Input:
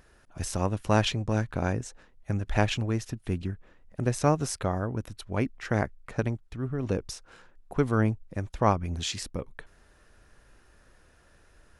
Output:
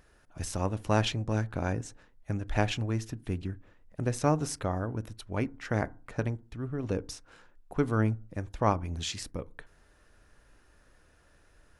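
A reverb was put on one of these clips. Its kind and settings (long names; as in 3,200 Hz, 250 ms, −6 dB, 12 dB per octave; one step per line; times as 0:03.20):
feedback delay network reverb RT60 0.37 s, low-frequency decay 1.3×, high-frequency decay 0.35×, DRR 16 dB
level −3 dB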